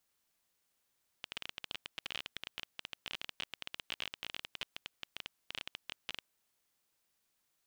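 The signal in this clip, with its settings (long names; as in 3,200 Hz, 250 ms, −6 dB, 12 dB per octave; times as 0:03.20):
Geiger counter clicks 20 per second −22.5 dBFS 4.95 s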